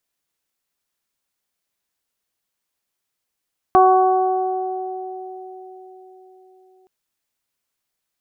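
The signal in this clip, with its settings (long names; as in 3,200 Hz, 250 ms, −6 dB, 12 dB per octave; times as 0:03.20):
harmonic partials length 3.12 s, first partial 374 Hz, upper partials 4/0/−19.5 dB, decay 4.80 s, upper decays 3.83/1.69/1.91 s, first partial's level −14 dB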